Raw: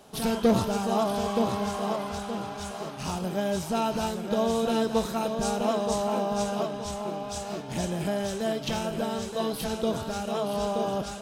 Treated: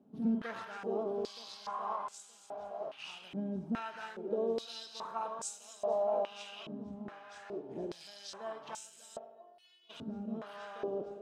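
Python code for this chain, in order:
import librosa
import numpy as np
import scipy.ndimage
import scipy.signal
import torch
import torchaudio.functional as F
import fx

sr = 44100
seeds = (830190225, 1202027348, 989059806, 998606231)

y = fx.stiff_resonator(x, sr, f0_hz=350.0, decay_s=0.66, stiffness=0.002, at=(9.17, 9.89), fade=0.02)
y = fx.rev_spring(y, sr, rt60_s=1.0, pass_ms=(52,), chirp_ms=65, drr_db=12.0)
y = fx.filter_held_bandpass(y, sr, hz=2.4, low_hz=240.0, high_hz=7500.0)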